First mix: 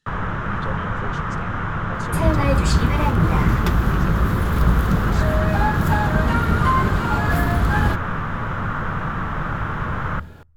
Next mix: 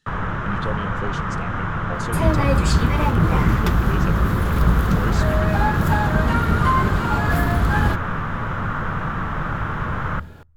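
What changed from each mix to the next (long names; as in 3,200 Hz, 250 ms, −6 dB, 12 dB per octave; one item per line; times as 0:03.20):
speech +4.5 dB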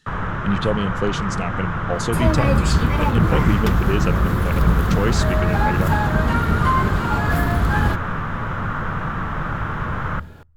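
speech +8.5 dB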